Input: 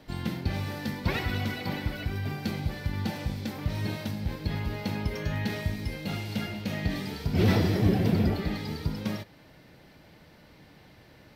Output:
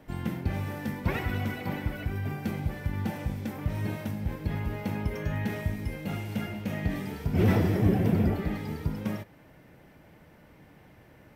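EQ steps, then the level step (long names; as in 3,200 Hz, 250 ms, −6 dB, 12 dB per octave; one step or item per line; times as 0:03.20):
parametric band 4,300 Hz −13.5 dB 0.84 octaves
0.0 dB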